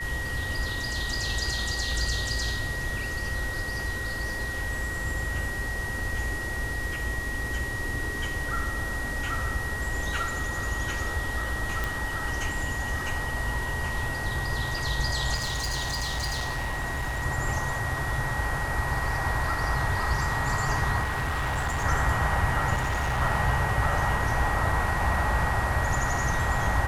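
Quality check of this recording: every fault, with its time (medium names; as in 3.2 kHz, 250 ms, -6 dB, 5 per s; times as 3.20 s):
whine 1.9 kHz -32 dBFS
11.84 s: pop
15.34–17.24 s: clipped -26 dBFS
21.02–21.85 s: clipped -24.5 dBFS
22.74–23.22 s: clipped -23.5 dBFS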